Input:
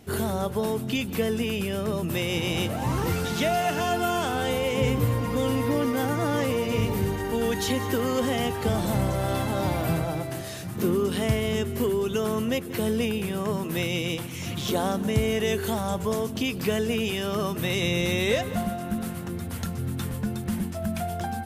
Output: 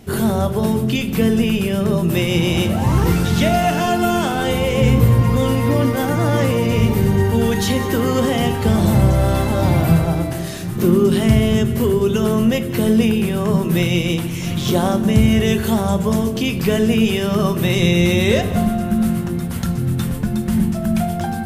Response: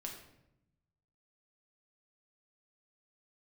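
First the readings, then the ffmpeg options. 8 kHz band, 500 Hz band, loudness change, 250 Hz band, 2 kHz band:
+6.0 dB, +7.0 dB, +9.5 dB, +11.5 dB, +6.5 dB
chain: -filter_complex "[0:a]asplit=2[s0][s1];[1:a]atrim=start_sample=2205,lowshelf=f=240:g=11.5[s2];[s1][s2]afir=irnorm=-1:irlink=0,volume=1[s3];[s0][s3]amix=inputs=2:normalize=0,volume=1.26"

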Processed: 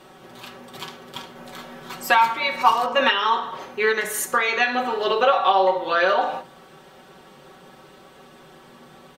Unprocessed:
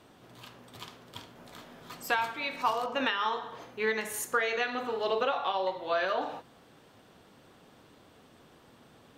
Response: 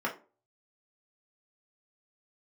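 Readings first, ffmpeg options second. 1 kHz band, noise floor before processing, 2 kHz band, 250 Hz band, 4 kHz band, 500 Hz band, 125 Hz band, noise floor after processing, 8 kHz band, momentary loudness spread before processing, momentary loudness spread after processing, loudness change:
+12.0 dB, -59 dBFS, +10.0 dB, +7.0 dB, +10.5 dB, +9.5 dB, no reading, -49 dBFS, +9.5 dB, 20 LU, 19 LU, +10.5 dB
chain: -filter_complex "[0:a]aecho=1:1:5.3:0.78,asplit=2[s0][s1];[1:a]atrim=start_sample=2205[s2];[s1][s2]afir=irnorm=-1:irlink=0,volume=0.224[s3];[s0][s3]amix=inputs=2:normalize=0,volume=2.11"

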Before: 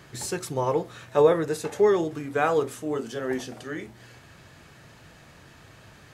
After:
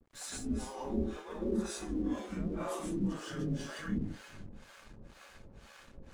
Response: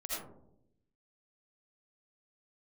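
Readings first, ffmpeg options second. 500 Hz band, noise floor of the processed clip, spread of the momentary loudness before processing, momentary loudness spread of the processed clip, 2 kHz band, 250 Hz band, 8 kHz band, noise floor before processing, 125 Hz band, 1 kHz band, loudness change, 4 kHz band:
-18.0 dB, -58 dBFS, 15 LU, 20 LU, -13.0 dB, -3.0 dB, -7.0 dB, -52 dBFS, -4.0 dB, -16.0 dB, -11.5 dB, -7.0 dB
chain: -filter_complex "[0:a]areverse,acompressor=threshold=0.0282:ratio=10,areverse[s0];[1:a]atrim=start_sample=2205,asetrate=22491,aresample=44100[s1];[s0][s1]afir=irnorm=-1:irlink=0,afreqshift=-110,acrossover=split=510[s2][s3];[s2]aeval=exprs='val(0)*(1-1/2+1/2*cos(2*PI*2*n/s))':c=same[s4];[s3]aeval=exprs='val(0)*(1-1/2-1/2*cos(2*PI*2*n/s))':c=same[s5];[s4][s5]amix=inputs=2:normalize=0,aeval=exprs='sgn(val(0))*max(abs(val(0))-0.00158,0)':c=same,volume=0.668"

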